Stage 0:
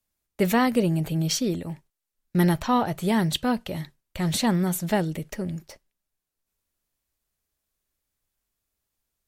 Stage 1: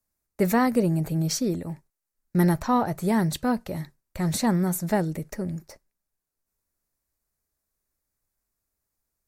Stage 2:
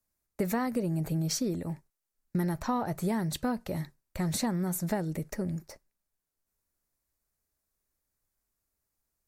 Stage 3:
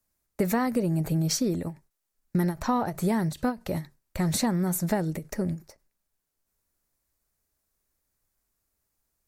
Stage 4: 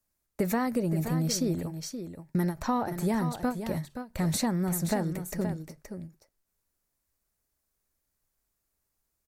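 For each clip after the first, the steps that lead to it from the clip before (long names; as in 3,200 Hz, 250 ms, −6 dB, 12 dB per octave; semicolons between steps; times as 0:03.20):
parametric band 3,100 Hz −13.5 dB 0.59 octaves
downward compressor 6 to 1, threshold −25 dBFS, peak gain reduction 9 dB; level −1.5 dB
every ending faded ahead of time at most 250 dB per second; level +4.5 dB
single-tap delay 524 ms −9 dB; level −2.5 dB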